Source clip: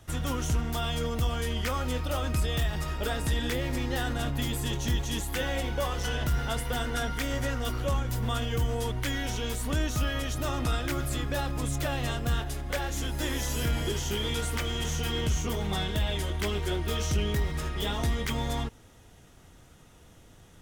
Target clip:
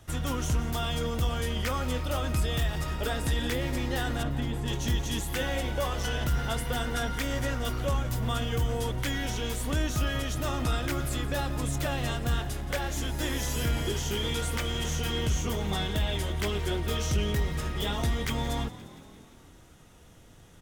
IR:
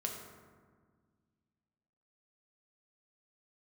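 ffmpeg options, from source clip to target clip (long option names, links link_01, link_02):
-filter_complex "[0:a]asettb=1/sr,asplit=3[link_01][link_02][link_03];[link_01]atrim=end=4.234[link_04];[link_02]atrim=start=4.23:end=4.68,asetpts=PTS-STARTPTS,afade=type=in:duration=0.004:curve=qsin,afade=type=out:start_time=0.446:duration=0.004:curve=qsin,lowpass=frequency=1500:poles=1[link_05];[link_03]atrim=start=4.676[link_06];[link_04][link_05]acrossfade=duration=0.004:curve1=hsin:curve2=qsin[link_07];[link_07][link_06]acrossfade=duration=0.004:curve1=qsin:curve2=hsin,asplit=7[link_08][link_09][link_10][link_11][link_12][link_13][link_14];[link_09]adelay=174,afreqshift=43,volume=-17dB[link_15];[link_10]adelay=348,afreqshift=86,volume=-21dB[link_16];[link_11]adelay=522,afreqshift=129,volume=-25dB[link_17];[link_12]adelay=696,afreqshift=172,volume=-29dB[link_18];[link_13]adelay=870,afreqshift=215,volume=-33.1dB[link_19];[link_14]adelay=1044,afreqshift=258,volume=-37.1dB[link_20];[link_08][link_15][link_16][link_17][link_18][link_19][link_20]amix=inputs=7:normalize=0"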